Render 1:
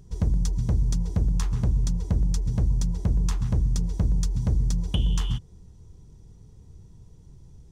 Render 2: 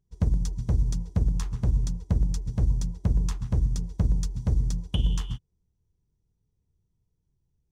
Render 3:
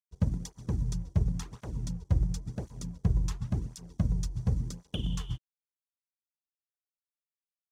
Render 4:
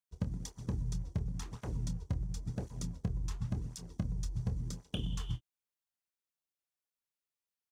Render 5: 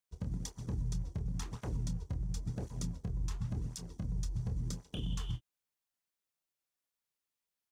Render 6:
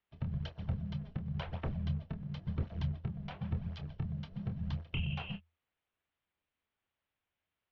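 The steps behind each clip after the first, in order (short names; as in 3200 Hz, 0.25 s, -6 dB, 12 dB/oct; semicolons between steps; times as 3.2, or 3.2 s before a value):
upward expander 2.5:1, over -37 dBFS; gain +1.5 dB
crossover distortion -52.5 dBFS; tape flanging out of phase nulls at 0.93 Hz, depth 4.9 ms
compressor 6:1, threshold -32 dBFS, peak gain reduction 12 dB; doubler 26 ms -11 dB
limiter -30 dBFS, peak gain reduction 8.5 dB; gain +2 dB
mistuned SSB -320 Hz 170–3600 Hz; bell 82 Hz +11.5 dB 0.23 oct; gain +7 dB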